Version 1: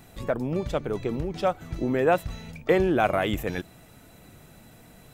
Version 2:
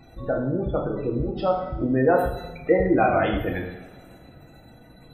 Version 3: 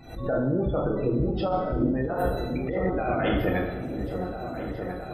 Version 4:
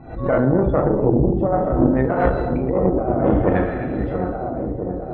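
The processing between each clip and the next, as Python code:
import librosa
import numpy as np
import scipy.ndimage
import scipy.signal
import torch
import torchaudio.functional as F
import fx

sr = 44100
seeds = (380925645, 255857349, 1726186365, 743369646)

y1 = fx.dynamic_eq(x, sr, hz=6000.0, q=1.4, threshold_db=-53.0, ratio=4.0, max_db=-6)
y1 = fx.spec_gate(y1, sr, threshold_db=-20, keep='strong')
y1 = fx.rev_double_slope(y1, sr, seeds[0], early_s=0.84, late_s=3.3, knee_db=-24, drr_db=-1.5)
y2 = fx.over_compress(y1, sr, threshold_db=-24.0, ratio=-1.0)
y2 = fx.echo_opening(y2, sr, ms=672, hz=400, octaves=2, feedback_pct=70, wet_db=-6)
y2 = fx.pre_swell(y2, sr, db_per_s=110.0)
y2 = y2 * librosa.db_to_amplitude(-1.5)
y3 = y2 + 10.0 ** (-13.5 / 20.0) * np.pad(y2, (int(249 * sr / 1000.0), 0))[:len(y2)]
y3 = fx.filter_lfo_lowpass(y3, sr, shape='sine', hz=0.57, low_hz=520.0, high_hz=2100.0, q=0.91)
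y3 = fx.cheby_harmonics(y3, sr, harmonics=(2,), levels_db=(-9,), full_scale_db=-13.0)
y3 = y3 * librosa.db_to_amplitude(7.5)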